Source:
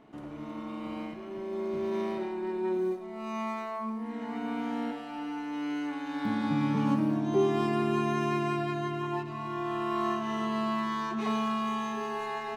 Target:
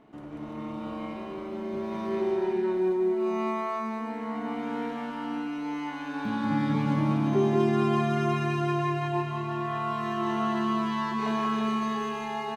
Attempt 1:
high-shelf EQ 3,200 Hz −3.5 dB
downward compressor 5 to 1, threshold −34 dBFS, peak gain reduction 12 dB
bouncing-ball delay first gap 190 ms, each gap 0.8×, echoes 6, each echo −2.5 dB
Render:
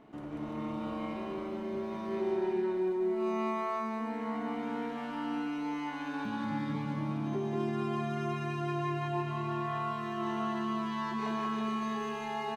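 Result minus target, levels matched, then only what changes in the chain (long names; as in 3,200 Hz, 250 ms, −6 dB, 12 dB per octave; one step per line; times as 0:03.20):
downward compressor: peak gain reduction +12 dB
remove: downward compressor 5 to 1, threshold −34 dBFS, peak gain reduction 12 dB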